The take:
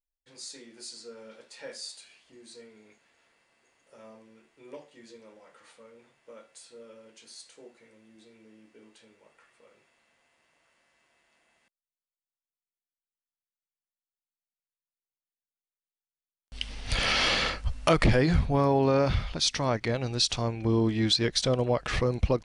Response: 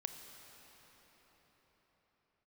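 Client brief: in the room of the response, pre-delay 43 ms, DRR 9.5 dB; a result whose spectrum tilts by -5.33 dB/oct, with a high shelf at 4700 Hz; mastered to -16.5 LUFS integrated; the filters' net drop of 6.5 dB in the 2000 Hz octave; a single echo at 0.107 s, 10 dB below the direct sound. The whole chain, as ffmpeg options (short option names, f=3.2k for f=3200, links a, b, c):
-filter_complex "[0:a]equalizer=f=2k:t=o:g=-6.5,highshelf=f=4.7k:g=-8,aecho=1:1:107:0.316,asplit=2[a][b];[1:a]atrim=start_sample=2205,adelay=43[c];[b][c]afir=irnorm=-1:irlink=0,volume=-7.5dB[d];[a][d]amix=inputs=2:normalize=0,volume=10dB"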